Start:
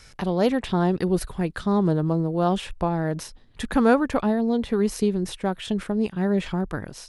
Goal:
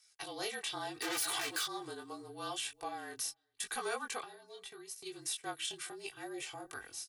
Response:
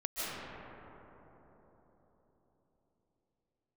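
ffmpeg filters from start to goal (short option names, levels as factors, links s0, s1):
-filter_complex "[0:a]asplit=2[s0][s1];[s1]adelay=402.3,volume=0.0794,highshelf=f=4000:g=-9.05[s2];[s0][s2]amix=inputs=2:normalize=0,asplit=3[s3][s4][s5];[s3]afade=t=out:st=1.01:d=0.02[s6];[s4]asplit=2[s7][s8];[s8]highpass=f=720:p=1,volume=50.1,asoftclip=type=tanh:threshold=0.282[s9];[s7][s9]amix=inputs=2:normalize=0,lowpass=f=4200:p=1,volume=0.501,afade=t=in:st=1.01:d=0.02,afade=t=out:st=1.64:d=0.02[s10];[s5]afade=t=in:st=1.64:d=0.02[s11];[s6][s10][s11]amix=inputs=3:normalize=0,acrossover=split=340[s12][s13];[s12]acompressor=threshold=0.0501:ratio=6[s14];[s14][s13]amix=inputs=2:normalize=0,flanger=delay=17.5:depth=5.6:speed=0.78,asplit=3[s15][s16][s17];[s15]afade=t=out:st=4.23:d=0.02[s18];[s16]acompressor=threshold=0.02:ratio=6,afade=t=in:st=4.23:d=0.02,afade=t=out:st=5.05:d=0.02[s19];[s17]afade=t=in:st=5.05:d=0.02[s20];[s18][s19][s20]amix=inputs=3:normalize=0,asettb=1/sr,asplit=3[s21][s22][s23];[s21]atrim=end=6.234[s24];[s22]atrim=start=6.23:end=6.7,asetpts=PTS-STARTPTS,afade=t=in:d=0.004:c=qsin,afade=t=out:st=0.466:d=0.004:c=qsin,equalizer=f=630:t=o:w=0.67:g=5,equalizer=f=1600:t=o:w=0.67:g=-6,equalizer=f=4000:t=o:w=0.67:g=-5[s25];[s23]atrim=start=6.696[s26];[s24][s25]acrossfade=d=0.004:c1=hsin:c2=qsin[s27];[s27][s26]acrossfade=d=0.004:c1=qsin:c2=hsin,agate=range=0.178:threshold=0.00891:ratio=16:detection=peak,aderivative,afreqshift=-40,asoftclip=type=tanh:threshold=0.0447,aecho=1:1:2.6:0.76,alimiter=level_in=2.51:limit=0.0631:level=0:latency=1:release=61,volume=0.398,volume=1.78"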